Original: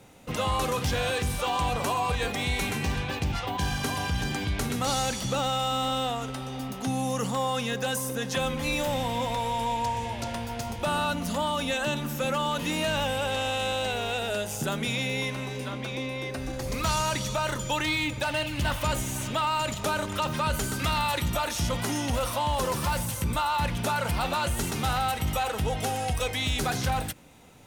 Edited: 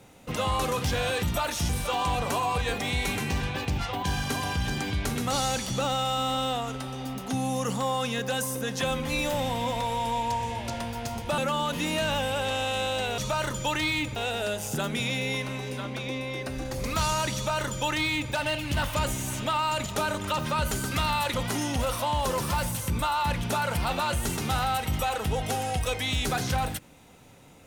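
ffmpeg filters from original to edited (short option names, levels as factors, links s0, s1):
-filter_complex "[0:a]asplit=7[s0][s1][s2][s3][s4][s5][s6];[s0]atrim=end=1.232[s7];[s1]atrim=start=21.218:end=21.682[s8];[s2]atrim=start=1.228:end=10.922[s9];[s3]atrim=start=12.238:end=14.042[s10];[s4]atrim=start=17.228:end=18.212[s11];[s5]atrim=start=14.038:end=21.222[s12];[s6]atrim=start=21.678[s13];[s7][s8]acrossfade=d=0.004:c1=hsin:c2=hsin[s14];[s14][s9]acrossfade=d=0.004:c1=hsin:c2=hsin[s15];[s15][s10]acrossfade=d=0.004:c1=hsin:c2=hsin[s16];[s16][s11]acrossfade=d=0.004:c1=hsin:c2=hsin[s17];[s17][s12]acrossfade=d=0.004:c1=hsin:c2=hsin[s18];[s18][s13]acrossfade=d=0.004:c1=hsin:c2=hsin"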